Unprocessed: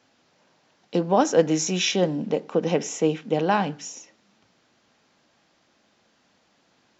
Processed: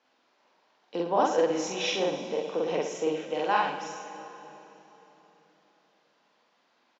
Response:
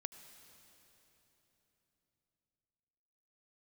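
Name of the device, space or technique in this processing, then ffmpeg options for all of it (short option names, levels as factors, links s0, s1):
station announcement: -filter_complex "[0:a]asettb=1/sr,asplit=3[s0][s1][s2];[s0]atrim=end=3.194[s3];[s1]atrim=start=3.19:end=3.84,asetpts=PTS-STARTPTS,afade=t=in:d=0.004:c=qsin,afade=t=out:st=0.646:d=0.004:c=qsin,tiltshelf=f=720:g=-4[s4];[s2]atrim=start=3.836[s5];[s3][s4]acrossfade=d=0.004:c1=hsin:c2=qsin[s6];[s6][s5]acrossfade=d=0.004:c1=qsin:c2=hsin,highpass=330,lowpass=4800,equalizer=f=1000:t=o:w=0.45:g=4.5,aecho=1:1:46.65|110.8:1|0.398[s7];[1:a]atrim=start_sample=2205[s8];[s7][s8]afir=irnorm=-1:irlink=0,volume=0.631"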